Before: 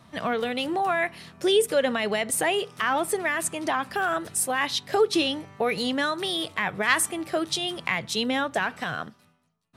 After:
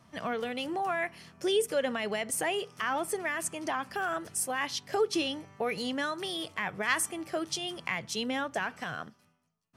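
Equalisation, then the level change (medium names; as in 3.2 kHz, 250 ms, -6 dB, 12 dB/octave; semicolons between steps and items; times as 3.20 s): peaking EQ 5.9 kHz +4.5 dB 0.43 oct; band-stop 3.8 kHz, Q 7.6; -6.5 dB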